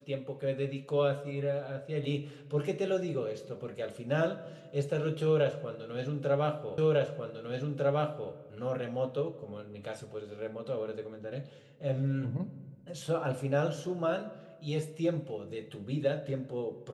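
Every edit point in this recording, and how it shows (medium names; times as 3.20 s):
6.78 s: repeat of the last 1.55 s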